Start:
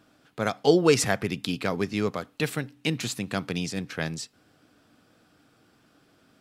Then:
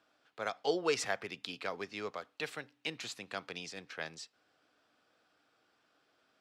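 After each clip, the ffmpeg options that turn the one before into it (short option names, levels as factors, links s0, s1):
-filter_complex "[0:a]acrossover=split=420 6800:gain=0.158 1 0.224[s0][s1][s2];[s0][s1][s2]amix=inputs=3:normalize=0,volume=0.398"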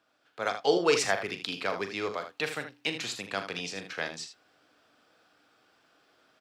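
-af "aecho=1:1:40.82|78.72:0.316|0.316,dynaudnorm=f=240:g=3:m=2.24"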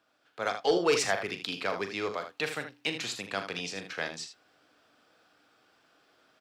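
-af "asoftclip=type=tanh:threshold=0.2"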